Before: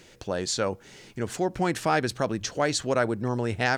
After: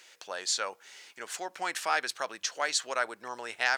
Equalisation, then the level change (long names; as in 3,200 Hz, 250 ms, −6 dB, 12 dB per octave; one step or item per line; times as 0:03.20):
high-pass filter 1,000 Hz 12 dB per octave
0.0 dB